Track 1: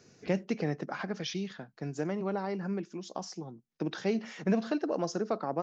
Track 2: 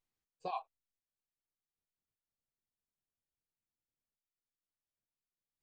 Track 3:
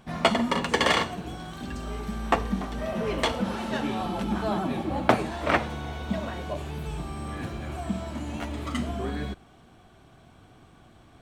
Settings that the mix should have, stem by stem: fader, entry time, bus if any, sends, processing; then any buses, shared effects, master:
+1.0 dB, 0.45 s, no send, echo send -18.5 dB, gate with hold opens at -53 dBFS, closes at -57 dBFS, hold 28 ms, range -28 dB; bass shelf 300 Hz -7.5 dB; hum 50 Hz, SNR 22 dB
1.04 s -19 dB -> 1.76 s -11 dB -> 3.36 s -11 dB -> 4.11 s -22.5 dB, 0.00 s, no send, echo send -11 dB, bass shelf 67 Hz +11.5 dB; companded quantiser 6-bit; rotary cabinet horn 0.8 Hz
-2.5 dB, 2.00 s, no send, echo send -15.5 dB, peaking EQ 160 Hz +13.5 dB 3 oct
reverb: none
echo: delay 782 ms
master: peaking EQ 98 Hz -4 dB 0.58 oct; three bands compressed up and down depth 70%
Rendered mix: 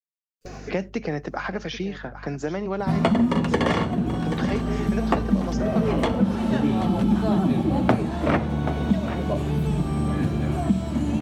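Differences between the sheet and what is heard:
stem 3: entry 2.00 s -> 2.80 s; master: missing peaking EQ 98 Hz -4 dB 0.58 oct

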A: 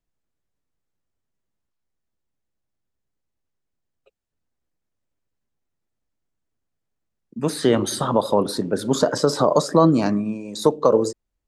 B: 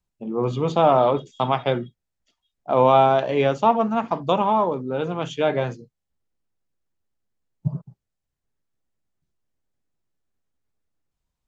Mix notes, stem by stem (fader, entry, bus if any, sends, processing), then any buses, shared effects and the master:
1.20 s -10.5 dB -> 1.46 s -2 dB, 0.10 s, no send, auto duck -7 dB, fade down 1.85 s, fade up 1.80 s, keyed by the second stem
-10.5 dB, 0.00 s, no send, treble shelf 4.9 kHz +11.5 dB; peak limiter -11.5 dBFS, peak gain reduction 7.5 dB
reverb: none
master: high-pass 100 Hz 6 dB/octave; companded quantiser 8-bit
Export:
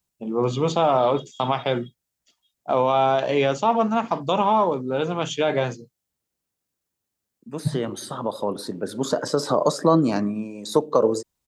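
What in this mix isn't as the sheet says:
stem B -10.5 dB -> +1.5 dB; master: missing companded quantiser 8-bit

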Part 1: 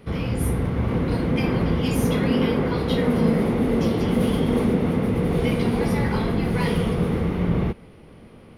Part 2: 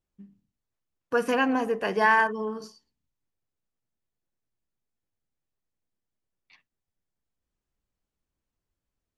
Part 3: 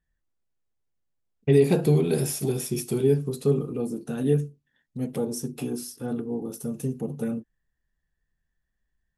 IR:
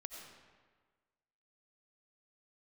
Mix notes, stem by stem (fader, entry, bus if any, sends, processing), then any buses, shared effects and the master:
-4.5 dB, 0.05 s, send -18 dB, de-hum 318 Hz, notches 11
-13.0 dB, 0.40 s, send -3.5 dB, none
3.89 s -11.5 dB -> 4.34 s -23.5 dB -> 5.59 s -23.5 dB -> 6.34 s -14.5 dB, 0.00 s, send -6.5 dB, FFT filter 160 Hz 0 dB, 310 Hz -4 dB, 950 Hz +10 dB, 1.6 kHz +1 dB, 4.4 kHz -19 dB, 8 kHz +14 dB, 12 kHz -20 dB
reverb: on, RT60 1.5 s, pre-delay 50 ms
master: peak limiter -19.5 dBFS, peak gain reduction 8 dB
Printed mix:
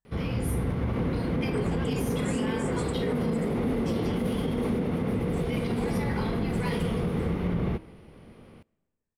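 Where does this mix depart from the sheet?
stem 2 -13.0 dB -> -19.5 dB; stem 3: send off

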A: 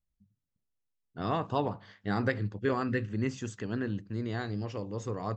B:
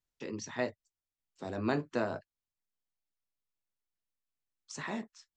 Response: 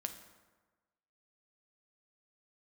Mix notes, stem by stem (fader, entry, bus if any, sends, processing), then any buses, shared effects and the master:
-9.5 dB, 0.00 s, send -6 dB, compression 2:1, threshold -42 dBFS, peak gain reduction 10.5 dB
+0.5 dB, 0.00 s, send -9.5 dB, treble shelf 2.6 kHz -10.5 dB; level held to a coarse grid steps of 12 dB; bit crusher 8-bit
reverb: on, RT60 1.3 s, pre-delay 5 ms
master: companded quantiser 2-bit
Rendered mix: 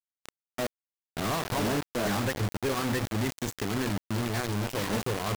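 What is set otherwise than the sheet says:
stem A -9.5 dB -> +1.0 dB; reverb return -8.5 dB

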